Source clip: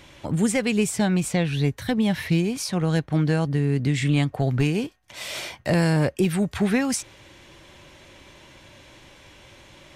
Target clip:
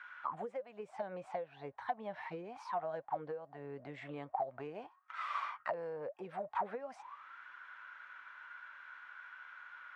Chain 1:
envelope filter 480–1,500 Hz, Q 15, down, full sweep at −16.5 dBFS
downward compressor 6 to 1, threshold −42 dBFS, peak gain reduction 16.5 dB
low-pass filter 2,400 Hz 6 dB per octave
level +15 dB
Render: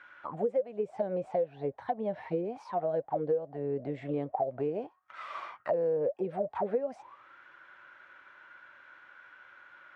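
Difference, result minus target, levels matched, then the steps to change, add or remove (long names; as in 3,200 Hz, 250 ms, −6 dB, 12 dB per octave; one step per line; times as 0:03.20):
1,000 Hz band −8.0 dB
add after low-pass filter: low shelf with overshoot 720 Hz −11.5 dB, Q 1.5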